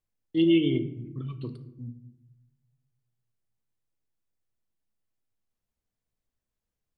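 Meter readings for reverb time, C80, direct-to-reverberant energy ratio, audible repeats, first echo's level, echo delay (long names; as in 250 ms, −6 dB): 0.90 s, 15.0 dB, 9.0 dB, no echo audible, no echo audible, no echo audible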